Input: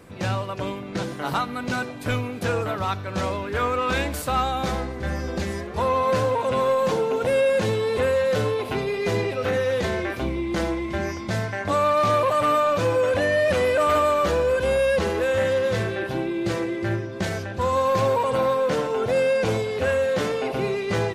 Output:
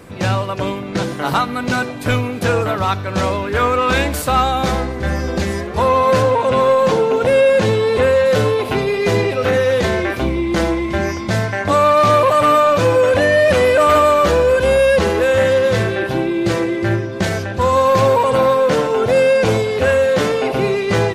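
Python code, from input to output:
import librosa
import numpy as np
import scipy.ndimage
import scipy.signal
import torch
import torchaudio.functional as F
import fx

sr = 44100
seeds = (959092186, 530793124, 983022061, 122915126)

y = fx.high_shelf(x, sr, hz=9700.0, db=-8.5, at=(6.22, 8.26))
y = y * 10.0 ** (8.0 / 20.0)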